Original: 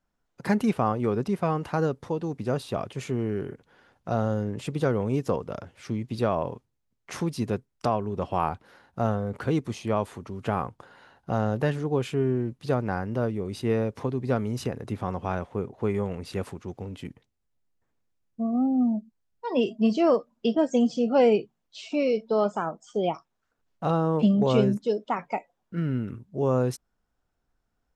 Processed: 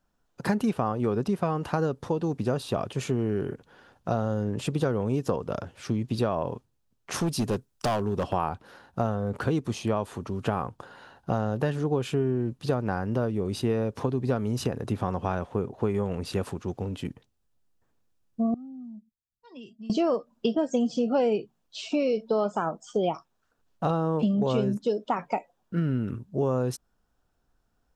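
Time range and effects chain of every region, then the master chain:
7.14–8.33 s: overload inside the chain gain 24 dB + treble shelf 4.4 kHz +6 dB
18.54–19.90 s: amplifier tone stack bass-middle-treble 6-0-2 + compression 3:1, threshold -44 dBFS
whole clip: compression 4:1, threshold -27 dBFS; peaking EQ 2.1 kHz -6.5 dB 0.27 oct; trim +4.5 dB

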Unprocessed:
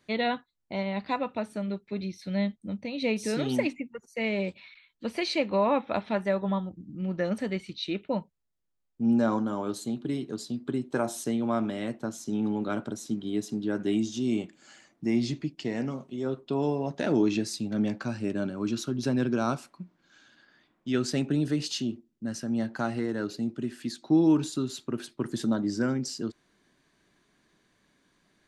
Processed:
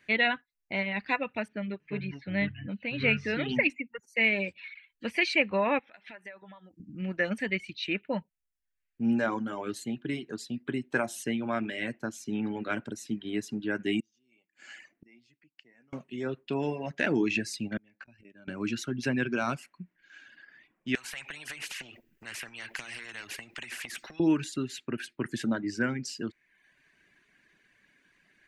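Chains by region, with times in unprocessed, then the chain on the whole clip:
1.48–3.70 s: low-pass 4.3 kHz 24 dB/octave + ever faster or slower copies 317 ms, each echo -6 st, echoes 2, each echo -6 dB + tape noise reduction on one side only decoder only
5.79–6.80 s: high-pass 470 Hz 6 dB/octave + compression 5:1, threshold -45 dBFS
14.00–15.93 s: bass shelf 170 Hz -9.5 dB + inverted gate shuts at -37 dBFS, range -29 dB
17.77–18.48 s: inverted gate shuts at -25 dBFS, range -27 dB + compressor with a negative ratio -54 dBFS + distance through air 56 m
20.95–24.20 s: compression 10:1, threshold -35 dBFS + spectrum-flattening compressor 4:1
whole clip: reverb removal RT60 0.68 s; high-order bell 2.1 kHz +12 dB 1.1 oct; trim -2 dB

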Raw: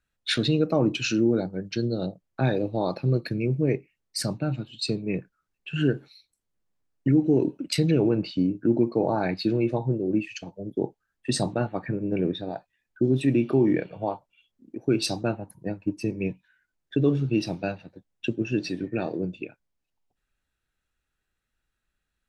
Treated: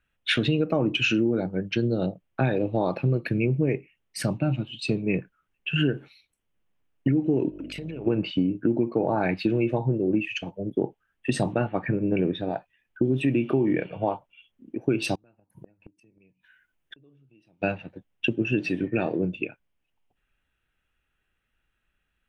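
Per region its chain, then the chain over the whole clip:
4.29–4.91 s: band-stop 450 Hz, Q 7.4 + dynamic bell 1.6 kHz, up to -6 dB, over -53 dBFS, Q 1.9
7.49–8.06 s: hum notches 50/100/150/200/250/300/350/400 Hz + compression 16:1, threshold -35 dBFS + mains buzz 50 Hz, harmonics 13, -53 dBFS -3 dB/octave
15.15–17.62 s: treble shelf 6.6 kHz +6.5 dB + compression 2:1, threshold -40 dBFS + inverted gate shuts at -33 dBFS, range -28 dB
whole clip: resonant high shelf 3.6 kHz -6 dB, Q 3; band-stop 7.4 kHz, Q 15; compression, threshold -23 dBFS; trim +4 dB

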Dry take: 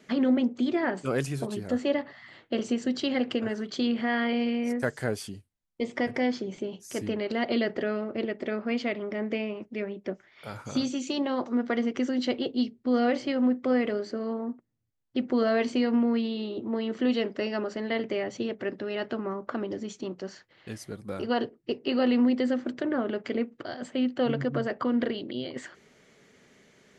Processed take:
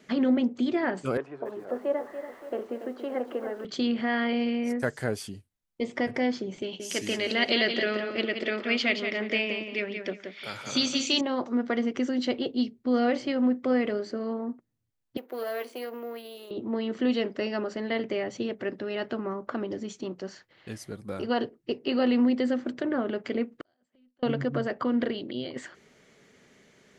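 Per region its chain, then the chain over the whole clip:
1.17–3.65 s: jump at every zero crossing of -43 dBFS + Butterworth band-pass 730 Hz, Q 0.73 + bit-crushed delay 285 ms, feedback 55%, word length 9-bit, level -10 dB
6.62–11.21 s: frequency weighting D + feedback delay 176 ms, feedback 24%, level -7 dB
15.17–16.51 s: partial rectifier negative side -7 dB + ladder high-pass 330 Hz, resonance 25% + careless resampling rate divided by 3×, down none, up hold
23.61–24.23 s: inverted gate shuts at -36 dBFS, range -33 dB + valve stage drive 43 dB, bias 0.7
whole clip: none

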